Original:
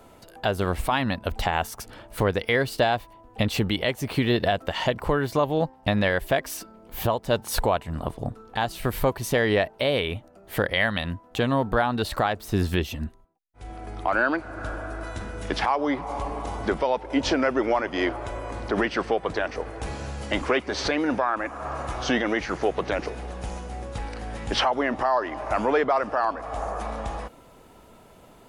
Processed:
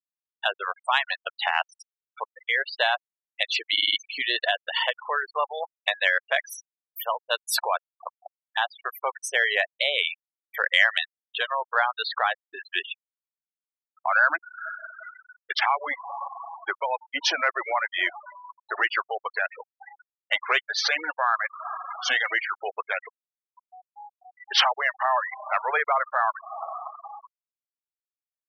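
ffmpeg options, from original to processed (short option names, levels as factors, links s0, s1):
-filter_complex "[0:a]asplit=7[s0][s1][s2][s3][s4][s5][s6];[s0]atrim=end=2.24,asetpts=PTS-STARTPTS,afade=t=out:st=2.236:d=0.004:c=hsin:silence=0.0707946[s7];[s1]atrim=start=2.24:end=3.772,asetpts=PTS-STARTPTS,afade=t=in:d=0.49:silence=0.0707946[s8];[s2]atrim=start=3.718:end=3.772[s9];[s3]atrim=start=3.718:end=3.772[s10];[s4]atrim=start=3.718:end=3.772[s11];[s5]atrim=start=3.718:end=3.772[s12];[s6]atrim=start=3.968[s13];[s7][s8]concat=n=2:v=0:a=1[s14];[s14][s9]acrossfade=d=0.004:c1=hsin:c2=hsin[s15];[s15][s10]acrossfade=d=0.004:c1=hsin:c2=hsin[s16];[s16][s11]acrossfade=d=0.004:c1=hsin:c2=hsin[s17];[s17][s12]acrossfade=d=0.004:c1=hsin:c2=hsin[s18];[s18][s13]acrossfade=d=0.004:c1=hsin:c2=hsin,highpass=1200,afftfilt=real='re*gte(hypot(re,im),0.0398)':imag='im*gte(hypot(re,im),0.0398)':win_size=1024:overlap=0.75,acontrast=64"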